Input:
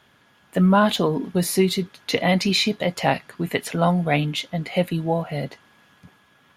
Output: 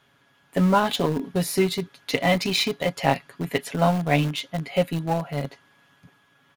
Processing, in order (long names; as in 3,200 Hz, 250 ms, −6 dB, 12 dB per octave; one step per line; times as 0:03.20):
comb filter 7.2 ms, depth 49%
in parallel at −7 dB: centre clipping without the shift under −17.5 dBFS
on the sum: level −5 dB